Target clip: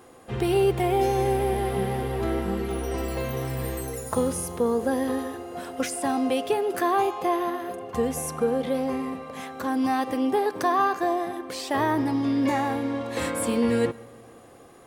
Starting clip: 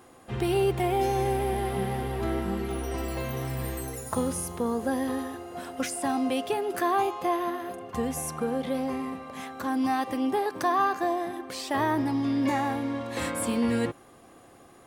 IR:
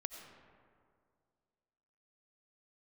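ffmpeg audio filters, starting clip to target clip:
-filter_complex "[0:a]equalizer=f=470:t=o:w=0.38:g=5.5,asplit=2[a][b];[1:a]atrim=start_sample=2205[c];[b][c]afir=irnorm=-1:irlink=0,volume=-10.5dB[d];[a][d]amix=inputs=2:normalize=0"

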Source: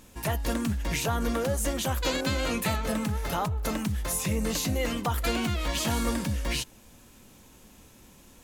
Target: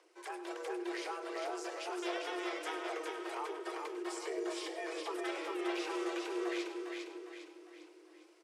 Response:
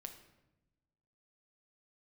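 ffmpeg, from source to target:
-filter_complex "[0:a]asetrate=32097,aresample=44100,atempo=1.37395,aecho=1:1:404|808|1212|1616|2020|2424:0.631|0.284|0.128|0.0575|0.0259|0.0116,aphaser=in_gain=1:out_gain=1:delay=4.2:decay=0.3:speed=1.4:type=sinusoidal,asplit=2[a][b];[b]asubboost=boost=4.5:cutoff=200[c];[1:a]atrim=start_sample=2205,adelay=100[d];[c][d]afir=irnorm=-1:irlink=0,volume=-6.5dB[e];[a][e]amix=inputs=2:normalize=0,afreqshift=310,lowpass=f=1.3k:p=1,equalizer=f=410:w=0.61:g=-14,volume=-4dB"

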